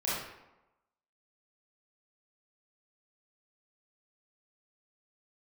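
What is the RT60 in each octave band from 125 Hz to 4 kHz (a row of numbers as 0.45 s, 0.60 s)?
0.85 s, 0.95 s, 0.95 s, 1.0 s, 0.80 s, 0.60 s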